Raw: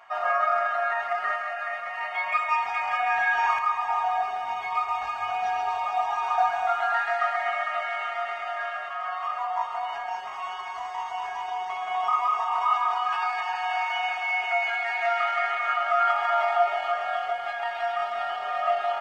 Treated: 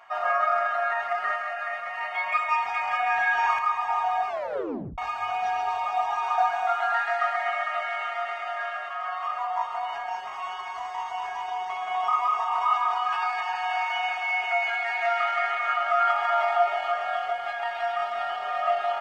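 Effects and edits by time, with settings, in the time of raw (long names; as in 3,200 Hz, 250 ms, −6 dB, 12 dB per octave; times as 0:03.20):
0:04.28: tape stop 0.70 s
0:06.21–0:09.26: high-pass filter 170 Hz 6 dB per octave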